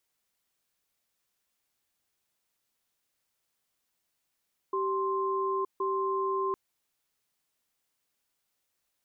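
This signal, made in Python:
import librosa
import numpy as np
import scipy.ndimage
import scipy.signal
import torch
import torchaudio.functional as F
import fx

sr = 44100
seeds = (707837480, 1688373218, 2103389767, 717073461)

y = fx.cadence(sr, length_s=1.81, low_hz=387.0, high_hz=1050.0, on_s=0.92, off_s=0.15, level_db=-29.5)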